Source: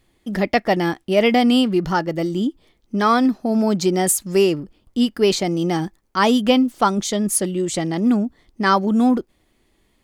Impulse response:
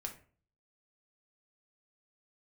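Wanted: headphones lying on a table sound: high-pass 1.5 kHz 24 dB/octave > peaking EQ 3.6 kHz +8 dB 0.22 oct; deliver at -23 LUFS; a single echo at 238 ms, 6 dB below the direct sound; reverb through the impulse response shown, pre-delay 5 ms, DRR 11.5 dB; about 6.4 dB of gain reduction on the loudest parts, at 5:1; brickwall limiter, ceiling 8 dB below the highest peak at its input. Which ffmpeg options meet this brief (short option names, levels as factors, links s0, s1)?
-filter_complex "[0:a]acompressor=threshold=0.126:ratio=5,alimiter=limit=0.141:level=0:latency=1,aecho=1:1:238:0.501,asplit=2[s0][s1];[1:a]atrim=start_sample=2205,adelay=5[s2];[s1][s2]afir=irnorm=-1:irlink=0,volume=0.316[s3];[s0][s3]amix=inputs=2:normalize=0,highpass=f=1500:w=0.5412,highpass=f=1500:w=1.3066,equalizer=f=3600:t=o:w=0.22:g=8,volume=2.82"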